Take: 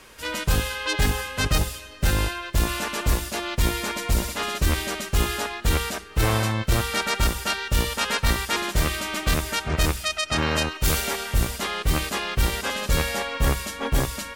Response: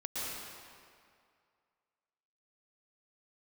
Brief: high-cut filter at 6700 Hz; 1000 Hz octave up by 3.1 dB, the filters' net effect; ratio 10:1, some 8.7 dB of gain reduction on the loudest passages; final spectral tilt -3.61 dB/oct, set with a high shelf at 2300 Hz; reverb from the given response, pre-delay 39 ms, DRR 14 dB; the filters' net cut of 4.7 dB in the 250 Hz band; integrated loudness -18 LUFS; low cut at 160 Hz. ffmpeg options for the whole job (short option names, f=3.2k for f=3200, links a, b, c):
-filter_complex "[0:a]highpass=160,lowpass=6.7k,equalizer=f=250:t=o:g=-5.5,equalizer=f=1k:t=o:g=5.5,highshelf=f=2.3k:g=-6,acompressor=threshold=-29dB:ratio=10,asplit=2[a][b];[1:a]atrim=start_sample=2205,adelay=39[c];[b][c]afir=irnorm=-1:irlink=0,volume=-18dB[d];[a][d]amix=inputs=2:normalize=0,volume=15.5dB"